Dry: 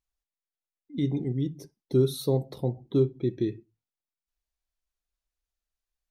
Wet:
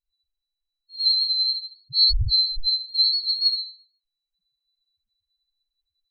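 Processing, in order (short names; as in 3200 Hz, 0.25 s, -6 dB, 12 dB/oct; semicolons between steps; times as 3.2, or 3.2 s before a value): band-swap scrambler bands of 4000 Hz; RIAA curve playback; Schroeder reverb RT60 0.48 s, combs from 28 ms, DRR -10 dB; loudest bins only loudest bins 2; gain +7 dB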